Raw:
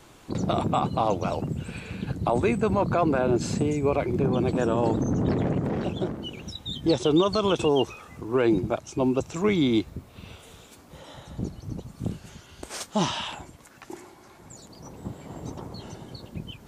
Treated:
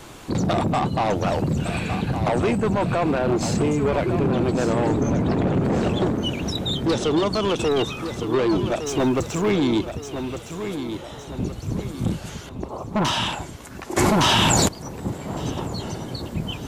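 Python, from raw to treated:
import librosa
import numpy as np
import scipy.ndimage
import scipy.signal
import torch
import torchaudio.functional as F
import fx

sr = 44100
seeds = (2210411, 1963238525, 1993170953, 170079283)

y = fx.law_mismatch(x, sr, coded='mu', at=(8.86, 9.51))
y = fx.ellip_lowpass(y, sr, hz=1100.0, order=4, stop_db=40, at=(12.49, 13.05))
y = fx.rider(y, sr, range_db=3, speed_s=0.5)
y = 10.0 ** (-24.0 / 20.0) * np.tanh(y / 10.0 ** (-24.0 / 20.0))
y = fx.echo_feedback(y, sr, ms=1161, feedback_pct=43, wet_db=-9)
y = fx.env_flatten(y, sr, amount_pct=100, at=(13.96, 14.67), fade=0.02)
y = y * 10.0 ** (7.5 / 20.0)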